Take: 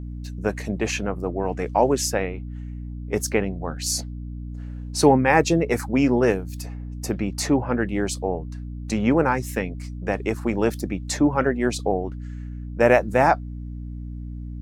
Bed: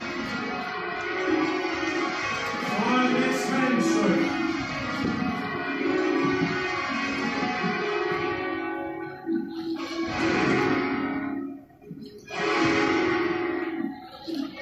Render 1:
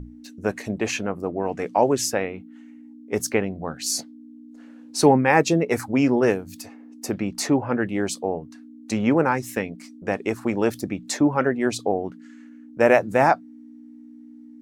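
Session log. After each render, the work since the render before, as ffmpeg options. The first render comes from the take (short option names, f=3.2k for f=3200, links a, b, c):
-af "bandreject=f=60:t=h:w=6,bandreject=f=120:t=h:w=6,bandreject=f=180:t=h:w=6"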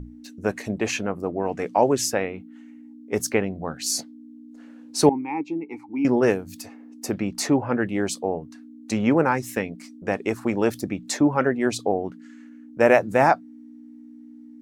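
-filter_complex "[0:a]asettb=1/sr,asplit=3[a][b][c];[a]atrim=end=5.094[d];[b]atrim=start=5.09:end=6.05,asetpts=PTS-STARTPTS,afade=t=in:d=0.004:c=qsin,afade=t=out:st=0.956:d=0.004:c=qsin,asplit=3[e][f][g];[e]bandpass=f=300:t=q:w=8,volume=0dB[h];[f]bandpass=f=870:t=q:w=8,volume=-6dB[i];[g]bandpass=f=2.24k:t=q:w=8,volume=-9dB[j];[h][i][j]amix=inputs=3:normalize=0[k];[c]atrim=start=6.046[l];[d][k]acrossfade=d=0.004:c1=hsin:c2=qsin[m];[m][l]acrossfade=d=0.004:c1=qsin:c2=hsin"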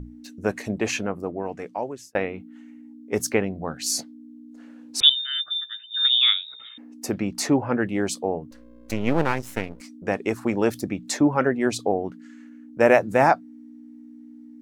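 -filter_complex "[0:a]asettb=1/sr,asplit=3[a][b][c];[a]atrim=end=5.004[d];[b]atrim=start=5:end=6.78,asetpts=PTS-STARTPTS,afade=t=in:d=0.004:c=qsin,afade=t=out:st=1.776:d=0.004:c=qsin,lowpass=f=3.3k:t=q:w=0.5098,lowpass=f=3.3k:t=q:w=0.6013,lowpass=f=3.3k:t=q:w=0.9,lowpass=f=3.3k:t=q:w=2.563,afreqshift=-3900[e];[c]atrim=start=6.776[f];[d][e]acrossfade=d=0.004:c1=hsin:c2=qsin[g];[g][f]acrossfade=d=0.004:c1=qsin:c2=hsin,asettb=1/sr,asplit=3[h][i][j];[h]atrim=end=8.514[k];[i]atrim=start=8.51:end=9.81,asetpts=PTS-STARTPTS,afade=t=in:d=0.004:c=qsin,afade=t=out:st=1.296:d=0.004:c=qsin,aeval=exprs='max(val(0),0)':c=same[l];[j]atrim=start=9.806[m];[k][l]acrossfade=d=0.004:c1=hsin:c2=qsin[n];[n][m]acrossfade=d=0.004:c1=qsin:c2=hsin,asplit=2[o][p];[o]atrim=end=2.15,asetpts=PTS-STARTPTS,afade=t=out:st=0.99:d=1.16[q];[p]atrim=start=2.15,asetpts=PTS-STARTPTS,afade=t=in:d=0.004:c=hsin[r];[q][r]concat=n=2:v=0:a=1"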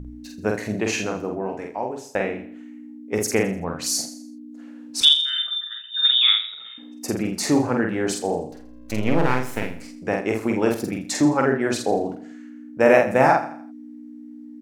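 -filter_complex "[0:a]asplit=2[a][b];[b]adelay=47,volume=-3dB[c];[a][c]amix=inputs=2:normalize=0,aecho=1:1:83|166|249|332:0.224|0.0873|0.0341|0.0133"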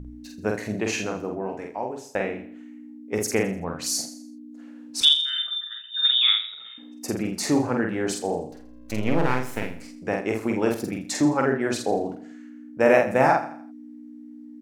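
-af "volume=-2.5dB"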